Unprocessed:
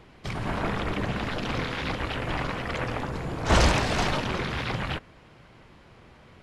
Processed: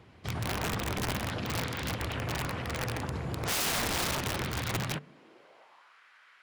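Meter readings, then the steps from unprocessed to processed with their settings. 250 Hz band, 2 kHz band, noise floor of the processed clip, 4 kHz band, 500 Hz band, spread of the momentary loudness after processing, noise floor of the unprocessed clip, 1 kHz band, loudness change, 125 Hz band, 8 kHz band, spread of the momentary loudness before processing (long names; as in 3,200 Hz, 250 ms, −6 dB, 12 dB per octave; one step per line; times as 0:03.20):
−6.0 dB, −5.0 dB, −60 dBFS, −2.5 dB, −7.0 dB, 7 LU, −53 dBFS, −6.5 dB, −4.5 dB, −4.5 dB, +3.0 dB, 10 LU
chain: high-pass filter sweep 85 Hz → 1,500 Hz, 0:04.70–0:05.99
hum removal 147 Hz, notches 4
wrap-around overflow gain 20 dB
level −5 dB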